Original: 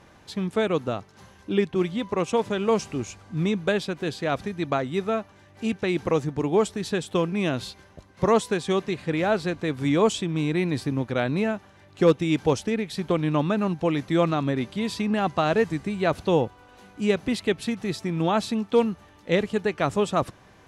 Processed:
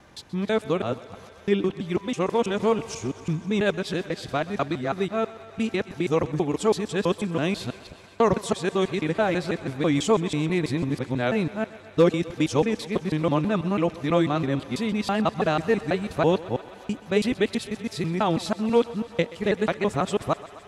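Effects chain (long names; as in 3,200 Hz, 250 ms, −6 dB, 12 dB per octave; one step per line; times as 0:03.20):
reversed piece by piece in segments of 164 ms
feedback echo with a high-pass in the loop 128 ms, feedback 81%, high-pass 280 Hz, level −17.5 dB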